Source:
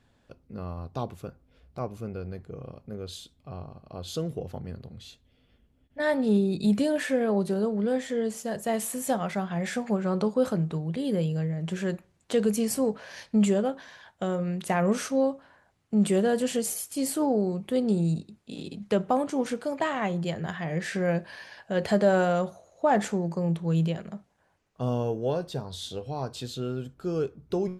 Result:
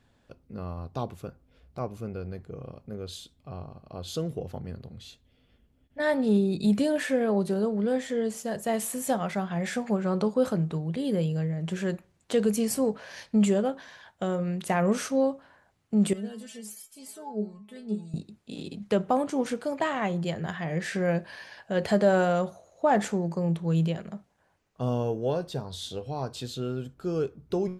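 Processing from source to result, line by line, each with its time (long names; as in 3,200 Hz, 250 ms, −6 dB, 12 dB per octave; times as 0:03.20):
0:16.13–0:18.14: stiff-string resonator 210 Hz, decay 0.23 s, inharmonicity 0.002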